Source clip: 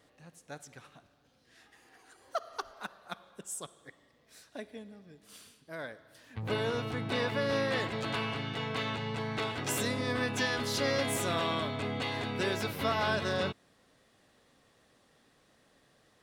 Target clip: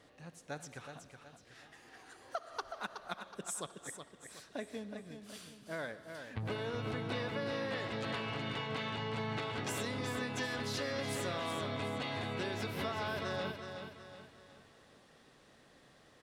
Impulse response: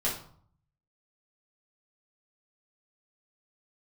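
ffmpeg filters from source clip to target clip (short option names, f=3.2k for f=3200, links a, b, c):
-filter_complex "[0:a]highshelf=f=11k:g=-10,acompressor=threshold=-39dB:ratio=6,asplit=2[a][b];[b]aecho=0:1:371|742|1113|1484|1855:0.422|0.177|0.0744|0.0312|0.0131[c];[a][c]amix=inputs=2:normalize=0,volume=3dB"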